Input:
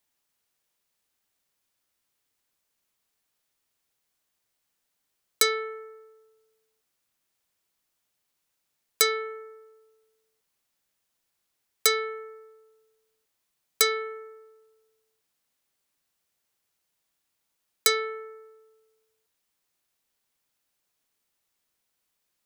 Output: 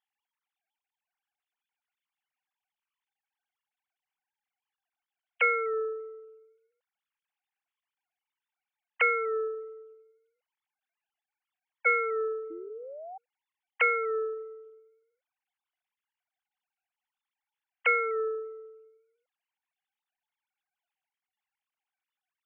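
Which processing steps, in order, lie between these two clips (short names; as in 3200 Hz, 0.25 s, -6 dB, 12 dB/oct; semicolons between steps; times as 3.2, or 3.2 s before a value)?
sine-wave speech; painted sound rise, 12.5–13.18, 320–790 Hz -42 dBFS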